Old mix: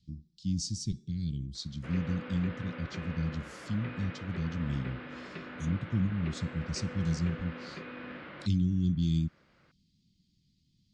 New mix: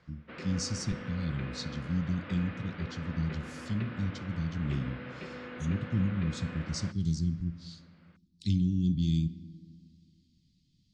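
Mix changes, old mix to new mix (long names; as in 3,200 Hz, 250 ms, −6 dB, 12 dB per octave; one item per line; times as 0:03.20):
background: entry −1.55 s
reverb: on, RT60 1.8 s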